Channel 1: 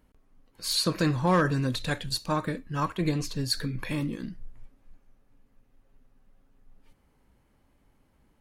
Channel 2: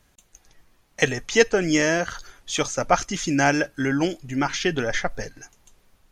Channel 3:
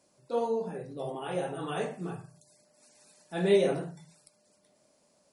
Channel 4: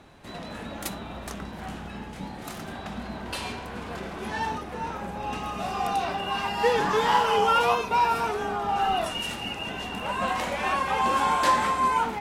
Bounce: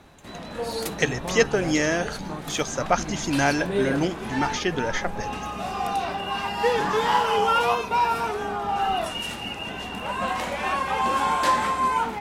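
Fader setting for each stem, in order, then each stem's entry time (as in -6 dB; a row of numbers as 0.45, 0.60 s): -10.0, -2.5, -2.0, +0.5 dB; 0.00, 0.00, 0.25, 0.00 s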